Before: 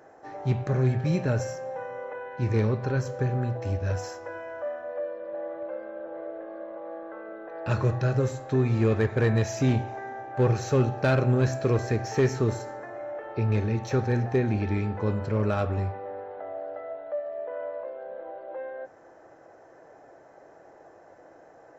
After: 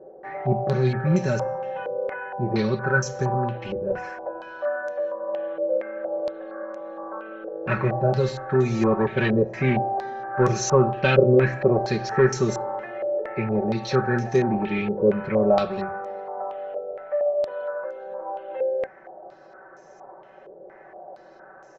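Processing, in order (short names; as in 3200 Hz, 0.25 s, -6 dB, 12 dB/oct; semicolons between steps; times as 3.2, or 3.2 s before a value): comb 5.3 ms, depth 98%; stepped low-pass 4.3 Hz 490–6200 Hz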